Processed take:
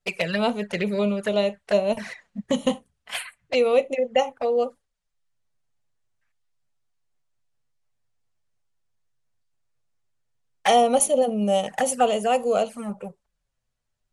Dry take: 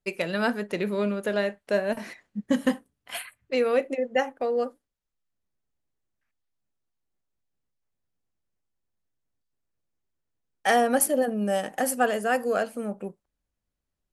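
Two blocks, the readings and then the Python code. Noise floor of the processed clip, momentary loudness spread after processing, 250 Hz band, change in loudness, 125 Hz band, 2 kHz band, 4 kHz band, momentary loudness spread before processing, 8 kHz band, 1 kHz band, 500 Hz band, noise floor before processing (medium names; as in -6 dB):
-78 dBFS, 14 LU, +1.0 dB, +3.0 dB, no reading, -1.5 dB, +6.5 dB, 14 LU, +3.0 dB, +4.0 dB, +4.0 dB, -84 dBFS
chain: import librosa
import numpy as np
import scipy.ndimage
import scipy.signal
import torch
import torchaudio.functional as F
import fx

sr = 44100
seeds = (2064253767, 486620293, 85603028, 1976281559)

y = scipy.signal.sosfilt(scipy.signal.butter(4, 10000.0, 'lowpass', fs=sr, output='sos'), x)
y = fx.env_flanger(y, sr, rest_ms=8.3, full_db=-23.5)
y = fx.peak_eq(y, sr, hz=300.0, db=-12.5, octaves=0.74)
y = y * librosa.db_to_amplitude(8.0)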